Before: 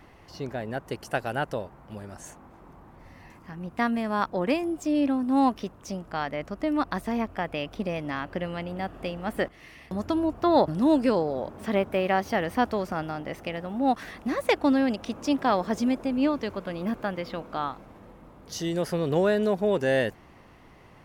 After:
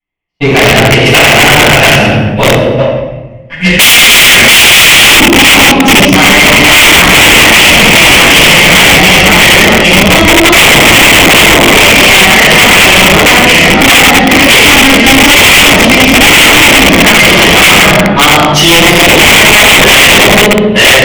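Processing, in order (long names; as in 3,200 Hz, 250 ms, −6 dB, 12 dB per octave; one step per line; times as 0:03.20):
delay that plays each chunk backwards 498 ms, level −2 dB
noise gate −35 dBFS, range −55 dB
automatic gain control gain up to 16 dB
hum removal 138 Hz, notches 5
gain on a spectral selection 0:03.51–0:04.58, 520–1,400 Hz −21 dB
rectangular room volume 590 cubic metres, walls mixed, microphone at 8.2 metres
in parallel at +2.5 dB: downward compressor 8 to 1, threshold −7 dBFS, peak gain reduction 17.5 dB
on the sum: gain on a spectral selection 0:02.79–0:05.19, 500–9,300 Hz +11 dB
wrap-around overflow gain −7 dB
flat-topped bell 2,600 Hz +14 dB 1 octave
soft clipping −1 dBFS, distortion −4 dB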